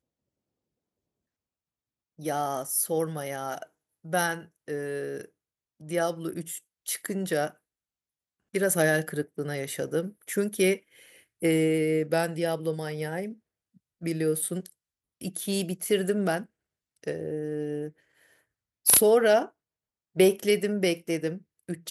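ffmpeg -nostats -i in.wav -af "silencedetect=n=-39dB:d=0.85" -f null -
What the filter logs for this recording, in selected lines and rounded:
silence_start: 0.00
silence_end: 2.19 | silence_duration: 2.19
silence_start: 7.50
silence_end: 8.54 | silence_duration: 1.04
silence_start: 17.89
silence_end: 18.86 | silence_duration: 0.97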